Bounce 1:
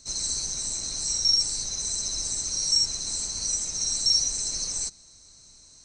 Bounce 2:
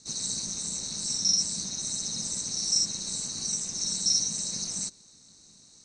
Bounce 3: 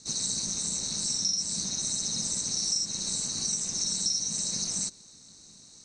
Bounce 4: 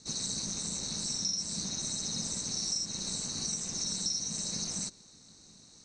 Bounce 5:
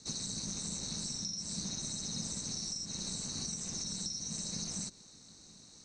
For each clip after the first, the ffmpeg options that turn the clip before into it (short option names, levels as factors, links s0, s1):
-af "aeval=exprs='val(0)*sin(2*PI*190*n/s)':c=same"
-af "acompressor=threshold=0.0398:ratio=6,volume=1.41"
-af "lowpass=f=3900:p=1"
-filter_complex "[0:a]acrossover=split=250[s0][s1];[s1]acompressor=threshold=0.0158:ratio=6[s2];[s0][s2]amix=inputs=2:normalize=0"